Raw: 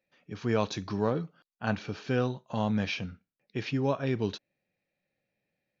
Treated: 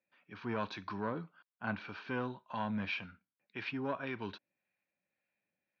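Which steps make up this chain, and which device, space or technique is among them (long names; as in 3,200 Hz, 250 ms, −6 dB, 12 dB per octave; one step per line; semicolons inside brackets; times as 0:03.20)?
guitar amplifier with harmonic tremolo (two-band tremolo in antiphase 1.8 Hz, depth 50%, crossover 660 Hz; soft clipping −21.5 dBFS, distortion −16 dB; loudspeaker in its box 100–4,300 Hz, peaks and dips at 140 Hz −8 dB, 460 Hz −5 dB, 1,000 Hz +9 dB, 1,500 Hz +8 dB, 2,400 Hz +5 dB)
level −5 dB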